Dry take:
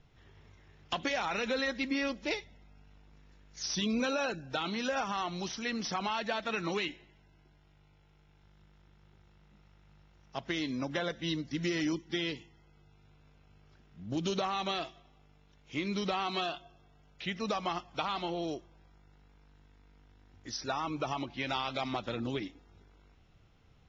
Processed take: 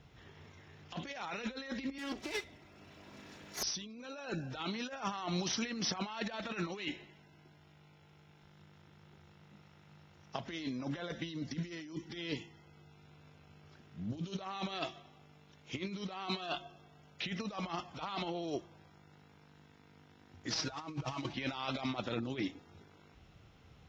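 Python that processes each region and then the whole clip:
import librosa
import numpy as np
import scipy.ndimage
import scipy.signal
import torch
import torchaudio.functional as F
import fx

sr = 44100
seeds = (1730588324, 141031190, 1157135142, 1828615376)

y = fx.chain(x, sr, fx.lower_of_two(delay_ms=3.0),
    fx.band_squash(depth_pct=40), at=(1.98, 3.63))
y = fx.chain(y, sr, fx.cvsd(bps=32000),
    fx.comb(ms=6.3, depth=0.74), at=(20.5, 21.33))
y = fx.over_compress(y, sr, threshold_db=-38.0, ratio=-0.5)
y = scipy.signal.sosfilt(scipy.signal.butter(2, 52.0, 'highpass', fs=sr, output='sos'), y)
y = fx.hum_notches(y, sr, base_hz=50, count=2)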